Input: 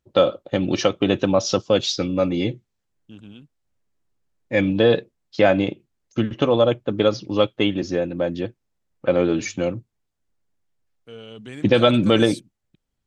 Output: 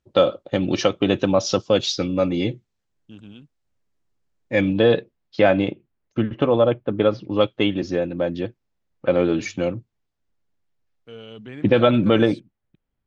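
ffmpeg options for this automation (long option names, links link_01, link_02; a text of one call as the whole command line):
ffmpeg -i in.wav -af "asetnsamples=nb_out_samples=441:pad=0,asendcmd='4.73 lowpass f 4300;5.71 lowpass f 2500;7.41 lowpass f 5400;11.45 lowpass f 2600',lowpass=7900" out.wav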